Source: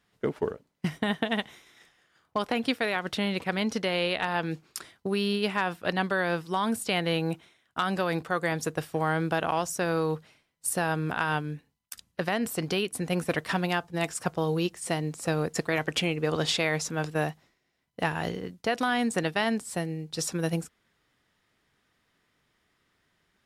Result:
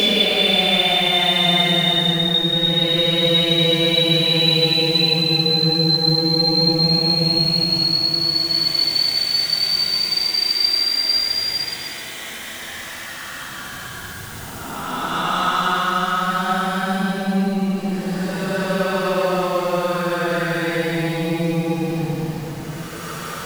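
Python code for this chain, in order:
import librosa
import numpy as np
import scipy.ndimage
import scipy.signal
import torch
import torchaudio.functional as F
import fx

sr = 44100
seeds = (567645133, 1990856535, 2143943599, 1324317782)

y = x + 0.5 * 10.0 ** (-30.5 / 20.0) * np.sign(x)
y = fx.spec_paint(y, sr, seeds[0], shape='rise', start_s=6.04, length_s=1.53, low_hz=2300.0, high_hz=4800.0, level_db=-24.0)
y = fx.paulstretch(y, sr, seeds[1], factor=17.0, window_s=0.1, from_s=6.89)
y = y * librosa.db_to_amplitude(4.5)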